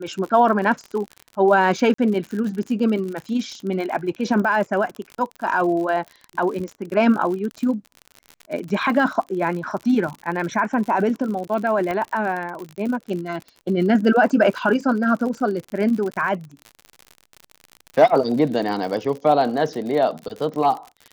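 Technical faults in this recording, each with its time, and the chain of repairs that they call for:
crackle 59/s -28 dBFS
1.94–1.98 gap 44 ms
11.91 pop -14 dBFS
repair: de-click; interpolate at 1.94, 44 ms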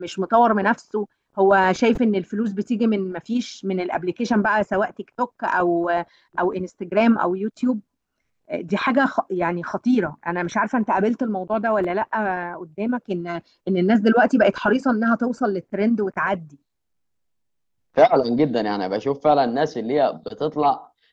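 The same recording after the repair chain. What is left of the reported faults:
11.91 pop

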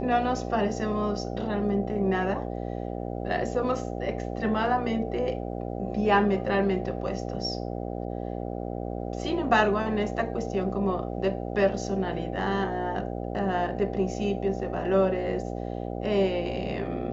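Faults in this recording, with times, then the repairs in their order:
buzz 60 Hz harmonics 13 -33 dBFS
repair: de-hum 60 Hz, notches 13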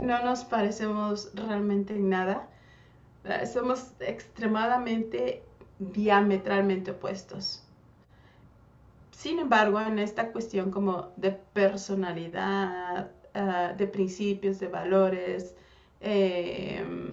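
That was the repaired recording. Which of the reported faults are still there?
none

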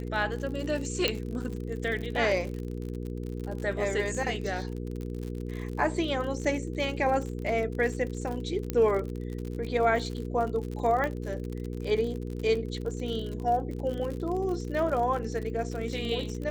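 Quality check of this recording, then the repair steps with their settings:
crackle 58/s -34 dBFS
hum 60 Hz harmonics 8 -35 dBFS
1.08 pop -10 dBFS
8.7 pop -15 dBFS
11.04 pop -18 dBFS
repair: de-click; de-hum 60 Hz, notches 8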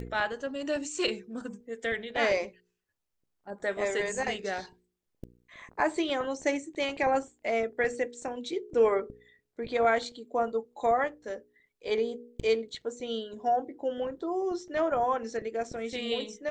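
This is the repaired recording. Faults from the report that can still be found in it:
1.08 pop

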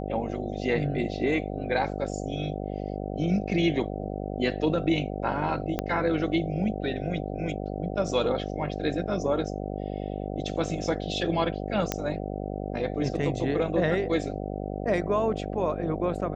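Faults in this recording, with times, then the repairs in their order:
buzz 50 Hz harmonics 15 -33 dBFS
5.79 pop -12 dBFS
11.92 pop -10 dBFS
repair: de-click; de-hum 50 Hz, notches 15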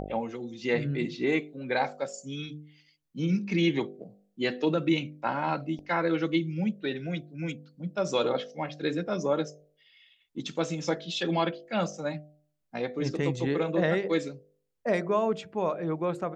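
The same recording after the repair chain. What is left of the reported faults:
5.79 pop

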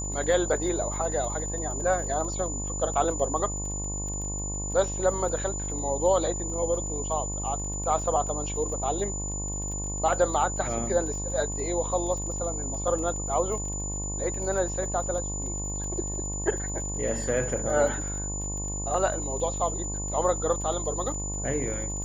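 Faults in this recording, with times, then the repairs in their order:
buzz 50 Hz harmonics 22 -34 dBFS
crackle 28/s -36 dBFS
tone 7000 Hz -33 dBFS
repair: de-click; de-hum 50 Hz, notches 22; notch 7000 Hz, Q 30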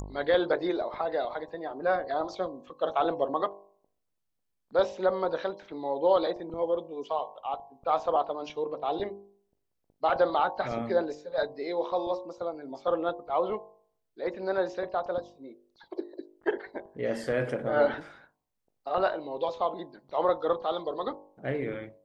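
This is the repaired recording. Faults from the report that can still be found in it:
none

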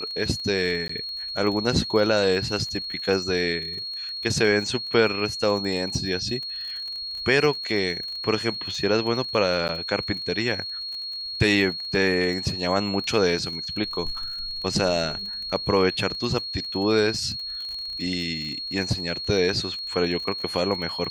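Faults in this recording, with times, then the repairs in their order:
crackle 34/s -32 dBFS
tone 4300 Hz -30 dBFS
0.88–0.89 gap 14 ms
9.68–9.69 gap 9.8 ms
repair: de-click; notch 4300 Hz, Q 30; interpolate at 0.88, 14 ms; interpolate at 9.68, 9.8 ms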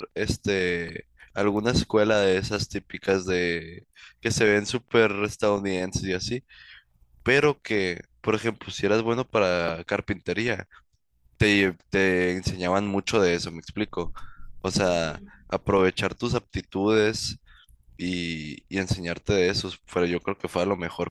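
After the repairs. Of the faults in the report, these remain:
none

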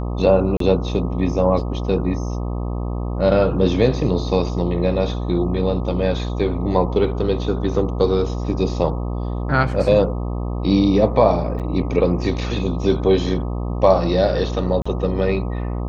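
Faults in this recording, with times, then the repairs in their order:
buzz 60 Hz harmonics 21 -24 dBFS
0.57–0.6 gap 33 ms
11.59–11.6 gap 7.4 ms
14.82–14.86 gap 35 ms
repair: de-hum 60 Hz, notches 21; interpolate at 0.57, 33 ms; interpolate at 11.59, 7.4 ms; interpolate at 14.82, 35 ms

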